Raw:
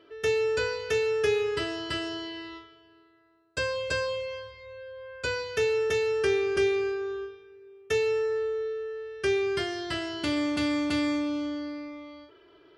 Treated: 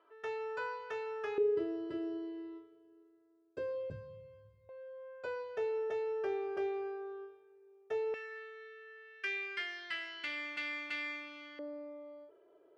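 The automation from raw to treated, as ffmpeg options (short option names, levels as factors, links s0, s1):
-af "asetnsamples=n=441:p=0,asendcmd='1.38 bandpass f 380;3.9 bandpass f 140;4.69 bandpass f 700;8.14 bandpass f 2100;11.59 bandpass f 560',bandpass=f=990:t=q:w=2.9:csg=0"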